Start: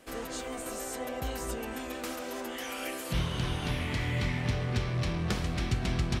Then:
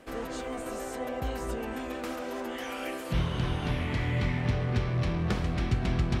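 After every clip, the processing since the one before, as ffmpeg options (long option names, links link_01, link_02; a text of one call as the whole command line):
ffmpeg -i in.wav -af "highshelf=frequency=3500:gain=-11,areverse,acompressor=mode=upward:threshold=-35dB:ratio=2.5,areverse,volume=2.5dB" out.wav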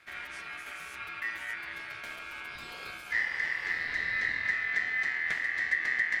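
ffmpeg -i in.wav -af "bass=frequency=250:gain=5,treble=frequency=4000:gain=0,aeval=exprs='val(0)*sin(2*PI*1900*n/s)':channel_layout=same,volume=-4.5dB" out.wav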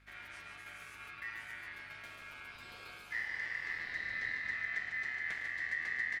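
ffmpeg -i in.wav -filter_complex "[0:a]aeval=exprs='val(0)+0.00158*(sin(2*PI*50*n/s)+sin(2*PI*2*50*n/s)/2+sin(2*PI*3*50*n/s)/3+sin(2*PI*4*50*n/s)/4+sin(2*PI*5*50*n/s)/5)':channel_layout=same,asplit=2[link_01][link_02];[link_02]aecho=0:1:107.9|148.7:0.251|0.501[link_03];[link_01][link_03]amix=inputs=2:normalize=0,volume=-9dB" out.wav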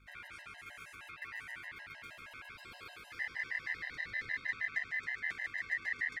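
ffmpeg -i in.wav -af "afftfilt=real='re*gt(sin(2*PI*6.4*pts/sr)*(1-2*mod(floor(b*sr/1024/530),2)),0)':imag='im*gt(sin(2*PI*6.4*pts/sr)*(1-2*mod(floor(b*sr/1024/530),2)),0)':win_size=1024:overlap=0.75,volume=2.5dB" out.wav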